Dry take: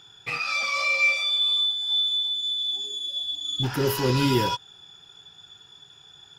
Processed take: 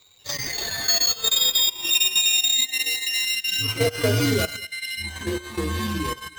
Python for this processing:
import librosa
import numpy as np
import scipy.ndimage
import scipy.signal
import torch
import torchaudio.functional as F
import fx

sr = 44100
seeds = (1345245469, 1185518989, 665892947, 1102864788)

y = fx.partial_stretch(x, sr, pct=128)
y = fx.low_shelf(y, sr, hz=390.0, db=-3.5)
y = np.repeat(y[::4], 4)[:len(y)]
y = fx.peak_eq(y, sr, hz=6200.0, db=6.5, octaves=2.1, at=(2.17, 2.64))
y = fx.echo_multitap(y, sr, ms=(84, 227), db=(-15.5, -20.0))
y = fx.level_steps(y, sr, step_db=9)
y = fx.echo_pitch(y, sr, ms=188, semitones=-5, count=3, db_per_echo=-6.0)
y = fx.transient(y, sr, attack_db=3, sustain_db=-12)
y = fx.notch(y, sr, hz=1400.0, q=12.0)
y = y * librosa.db_to_amplitude(7.0)